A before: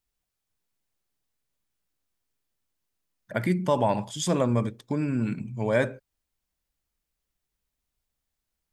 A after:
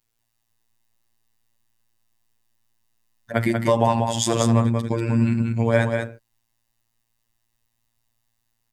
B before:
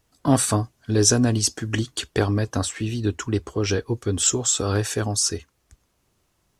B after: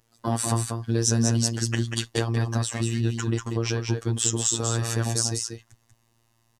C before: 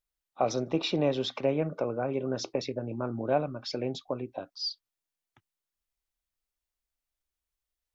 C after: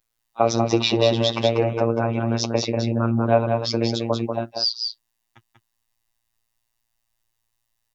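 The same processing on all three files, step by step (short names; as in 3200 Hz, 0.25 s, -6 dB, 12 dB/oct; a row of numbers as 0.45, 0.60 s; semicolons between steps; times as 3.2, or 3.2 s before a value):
compressor 2:1, threshold -24 dBFS; robotiser 115 Hz; on a send: echo 0.19 s -5 dB; on the sum: normalise peaks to -2 dBFS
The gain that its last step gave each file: +9.5, +1.5, +13.0 dB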